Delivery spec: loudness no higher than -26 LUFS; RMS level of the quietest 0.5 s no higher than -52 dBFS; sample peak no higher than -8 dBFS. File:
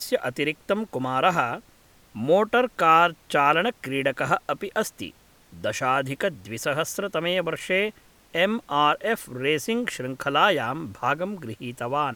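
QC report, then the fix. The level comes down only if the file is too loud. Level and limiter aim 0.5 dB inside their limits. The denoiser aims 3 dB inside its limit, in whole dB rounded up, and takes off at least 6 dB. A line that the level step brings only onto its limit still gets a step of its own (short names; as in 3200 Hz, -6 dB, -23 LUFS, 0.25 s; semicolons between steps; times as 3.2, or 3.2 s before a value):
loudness -24.5 LUFS: fail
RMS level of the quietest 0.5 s -56 dBFS: OK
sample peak -4.5 dBFS: fail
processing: gain -2 dB; limiter -8.5 dBFS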